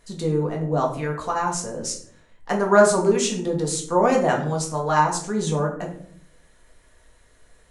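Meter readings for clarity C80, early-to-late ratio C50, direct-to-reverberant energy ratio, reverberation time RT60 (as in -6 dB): 12.5 dB, 8.5 dB, -1.0 dB, 0.60 s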